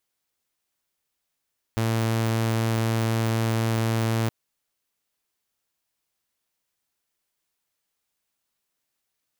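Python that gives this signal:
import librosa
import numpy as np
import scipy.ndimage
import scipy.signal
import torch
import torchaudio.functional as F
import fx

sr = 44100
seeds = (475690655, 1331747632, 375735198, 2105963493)

y = 10.0 ** (-19.0 / 20.0) * (2.0 * np.mod(113.0 * (np.arange(round(2.52 * sr)) / sr), 1.0) - 1.0)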